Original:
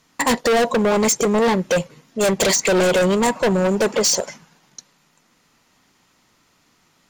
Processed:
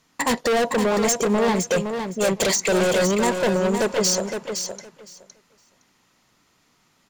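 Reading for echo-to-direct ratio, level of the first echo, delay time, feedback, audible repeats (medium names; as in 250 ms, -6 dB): -7.0 dB, -7.0 dB, 513 ms, 15%, 2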